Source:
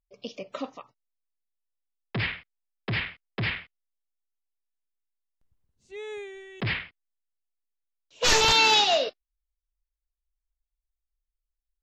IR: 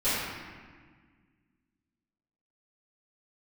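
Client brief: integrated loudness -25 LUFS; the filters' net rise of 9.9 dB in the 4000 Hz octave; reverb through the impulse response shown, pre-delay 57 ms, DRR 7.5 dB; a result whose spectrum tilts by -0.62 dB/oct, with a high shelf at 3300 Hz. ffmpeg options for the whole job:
-filter_complex "[0:a]highshelf=f=3.3k:g=4,equalizer=f=4k:t=o:g=9,asplit=2[a][b];[1:a]atrim=start_sample=2205,adelay=57[c];[b][c]afir=irnorm=-1:irlink=0,volume=-20.5dB[d];[a][d]amix=inputs=2:normalize=0,volume=-10dB"

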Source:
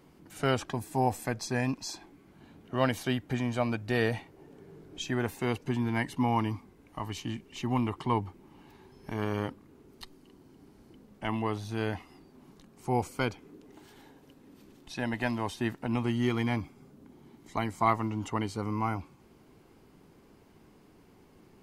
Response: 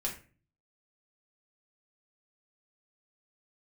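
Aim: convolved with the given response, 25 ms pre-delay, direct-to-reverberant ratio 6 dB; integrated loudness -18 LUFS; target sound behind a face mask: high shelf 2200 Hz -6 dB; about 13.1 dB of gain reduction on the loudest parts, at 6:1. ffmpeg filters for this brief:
-filter_complex "[0:a]acompressor=threshold=-35dB:ratio=6,asplit=2[a][b];[1:a]atrim=start_sample=2205,adelay=25[c];[b][c]afir=irnorm=-1:irlink=0,volume=-8.5dB[d];[a][d]amix=inputs=2:normalize=0,highshelf=f=2.2k:g=-6,volume=22dB"

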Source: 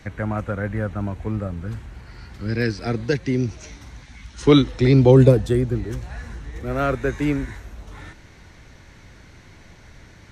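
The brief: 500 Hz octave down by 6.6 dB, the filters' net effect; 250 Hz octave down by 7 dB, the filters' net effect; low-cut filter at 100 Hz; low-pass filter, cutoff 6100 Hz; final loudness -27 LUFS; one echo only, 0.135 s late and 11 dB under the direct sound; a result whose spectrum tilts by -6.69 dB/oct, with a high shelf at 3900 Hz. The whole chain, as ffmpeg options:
-af "highpass=100,lowpass=6.1k,equalizer=f=250:t=o:g=-7,equalizer=f=500:t=o:g=-5.5,highshelf=f=3.9k:g=-8,aecho=1:1:135:0.282,volume=-2dB"

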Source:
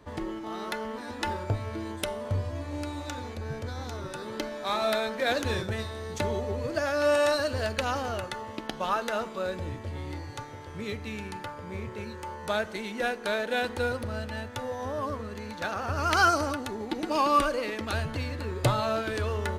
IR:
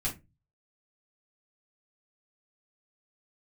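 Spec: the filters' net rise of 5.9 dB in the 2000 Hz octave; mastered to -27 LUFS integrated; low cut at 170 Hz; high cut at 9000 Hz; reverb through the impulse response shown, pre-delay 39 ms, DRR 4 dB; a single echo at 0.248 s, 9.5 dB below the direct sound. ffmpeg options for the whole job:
-filter_complex "[0:a]highpass=170,lowpass=9k,equalizer=f=2k:t=o:g=8.5,aecho=1:1:248:0.335,asplit=2[a][b];[1:a]atrim=start_sample=2205,adelay=39[c];[b][c]afir=irnorm=-1:irlink=0,volume=-8dB[d];[a][d]amix=inputs=2:normalize=0,volume=-0.5dB"

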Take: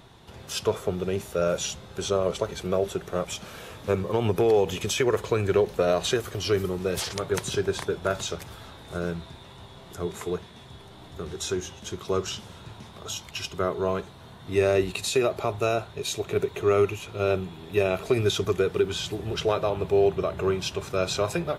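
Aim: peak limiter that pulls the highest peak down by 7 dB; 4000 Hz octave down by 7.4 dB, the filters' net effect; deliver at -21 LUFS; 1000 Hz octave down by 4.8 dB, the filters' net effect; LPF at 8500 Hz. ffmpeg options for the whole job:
-af "lowpass=8.5k,equalizer=f=1k:t=o:g=-6.5,equalizer=f=4k:t=o:g=-9,volume=10dB,alimiter=limit=-9dB:level=0:latency=1"

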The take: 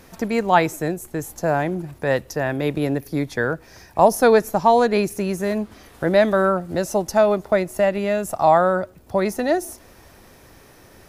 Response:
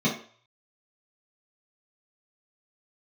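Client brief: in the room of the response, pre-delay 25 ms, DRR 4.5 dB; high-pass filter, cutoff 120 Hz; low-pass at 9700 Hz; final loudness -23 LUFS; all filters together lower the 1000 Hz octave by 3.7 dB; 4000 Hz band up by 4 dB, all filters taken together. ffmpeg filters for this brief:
-filter_complex "[0:a]highpass=120,lowpass=9.7k,equalizer=f=1k:t=o:g=-5.5,equalizer=f=4k:t=o:g=5,asplit=2[a][b];[1:a]atrim=start_sample=2205,adelay=25[c];[b][c]afir=irnorm=-1:irlink=0,volume=-16.5dB[d];[a][d]amix=inputs=2:normalize=0,volume=-5dB"

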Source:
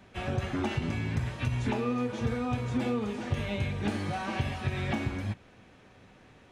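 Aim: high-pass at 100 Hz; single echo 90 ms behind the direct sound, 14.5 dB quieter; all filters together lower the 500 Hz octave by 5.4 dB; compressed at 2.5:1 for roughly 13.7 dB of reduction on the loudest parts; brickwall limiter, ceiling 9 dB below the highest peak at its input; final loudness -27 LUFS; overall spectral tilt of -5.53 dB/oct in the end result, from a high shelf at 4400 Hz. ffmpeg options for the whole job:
-af "highpass=100,equalizer=f=500:t=o:g=-6.5,highshelf=f=4.4k:g=-7,acompressor=threshold=-49dB:ratio=2.5,alimiter=level_in=17.5dB:limit=-24dB:level=0:latency=1,volume=-17.5dB,aecho=1:1:90:0.188,volume=23.5dB"

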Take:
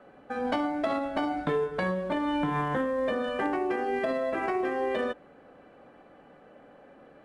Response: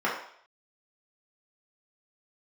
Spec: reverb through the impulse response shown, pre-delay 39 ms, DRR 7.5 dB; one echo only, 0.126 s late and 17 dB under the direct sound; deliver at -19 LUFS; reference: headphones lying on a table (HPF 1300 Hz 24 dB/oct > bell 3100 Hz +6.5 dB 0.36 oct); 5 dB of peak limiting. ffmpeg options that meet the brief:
-filter_complex "[0:a]alimiter=limit=-22.5dB:level=0:latency=1,aecho=1:1:126:0.141,asplit=2[a][b];[1:a]atrim=start_sample=2205,adelay=39[c];[b][c]afir=irnorm=-1:irlink=0,volume=-20.5dB[d];[a][d]amix=inputs=2:normalize=0,highpass=f=1.3k:w=0.5412,highpass=f=1.3k:w=1.3066,equalizer=f=3.1k:t=o:w=0.36:g=6.5,volume=20.5dB"

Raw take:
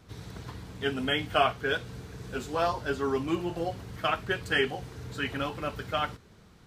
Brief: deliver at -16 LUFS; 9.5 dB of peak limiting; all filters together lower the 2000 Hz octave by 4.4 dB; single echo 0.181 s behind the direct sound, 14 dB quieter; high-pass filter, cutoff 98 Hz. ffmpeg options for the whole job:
-af "highpass=98,equalizer=f=2k:t=o:g=-6,alimiter=limit=-21.5dB:level=0:latency=1,aecho=1:1:181:0.2,volume=18.5dB"

